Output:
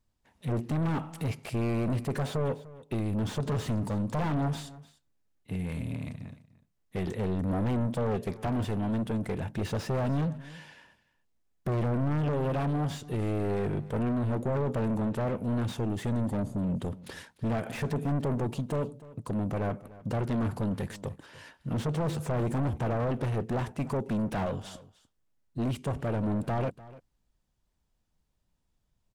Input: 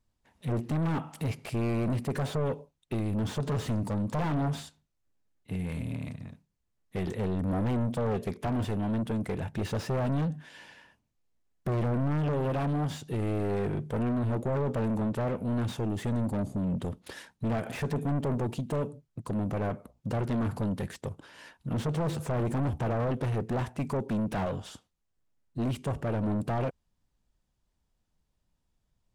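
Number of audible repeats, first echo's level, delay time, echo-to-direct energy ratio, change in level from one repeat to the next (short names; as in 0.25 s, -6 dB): 1, -19.0 dB, 0.297 s, -19.0 dB, no steady repeat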